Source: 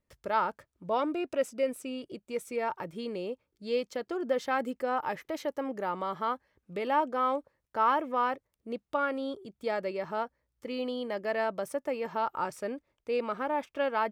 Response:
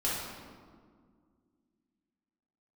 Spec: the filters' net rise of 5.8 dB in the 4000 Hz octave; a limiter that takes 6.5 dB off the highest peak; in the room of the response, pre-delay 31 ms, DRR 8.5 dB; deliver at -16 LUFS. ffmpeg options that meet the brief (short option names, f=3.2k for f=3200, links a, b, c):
-filter_complex "[0:a]equalizer=f=4k:t=o:g=8,alimiter=limit=-21.5dB:level=0:latency=1,asplit=2[a][b];[1:a]atrim=start_sample=2205,adelay=31[c];[b][c]afir=irnorm=-1:irlink=0,volume=-16dB[d];[a][d]amix=inputs=2:normalize=0,volume=17dB"